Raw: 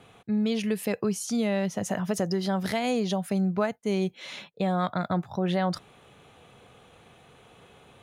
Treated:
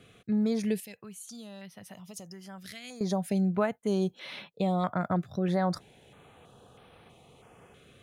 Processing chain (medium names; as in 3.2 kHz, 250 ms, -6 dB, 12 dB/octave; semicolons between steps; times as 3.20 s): 0.80–3.01 s: amplifier tone stack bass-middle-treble 5-5-5; step-sequenced notch 3.1 Hz 890–7000 Hz; trim -1 dB